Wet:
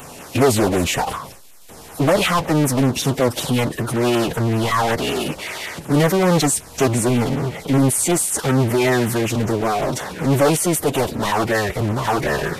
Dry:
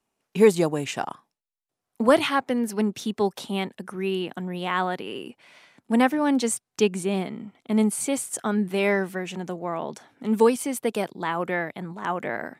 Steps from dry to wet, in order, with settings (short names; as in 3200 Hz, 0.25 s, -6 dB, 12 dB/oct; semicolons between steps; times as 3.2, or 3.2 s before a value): power-law curve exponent 0.35; formant-preserving pitch shift -8 st; LFO notch saw down 5.3 Hz 940–5400 Hz; gain -2.5 dB